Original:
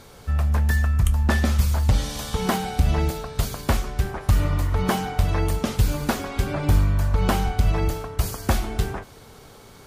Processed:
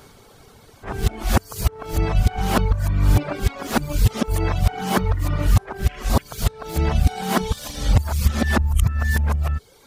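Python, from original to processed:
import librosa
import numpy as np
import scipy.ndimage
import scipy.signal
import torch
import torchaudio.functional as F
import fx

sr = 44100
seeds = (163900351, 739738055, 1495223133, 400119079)

p1 = x[::-1].copy()
p2 = fx.spec_repair(p1, sr, seeds[0], start_s=5.92, length_s=0.27, low_hz=1300.0, high_hz=3400.0, source='before')
p3 = fx.dereverb_blind(p2, sr, rt60_s=0.82)
p4 = np.sign(p3) * np.maximum(np.abs(p3) - 10.0 ** (-35.5 / 20.0), 0.0)
y = p3 + (p4 * librosa.db_to_amplitude(-6.0))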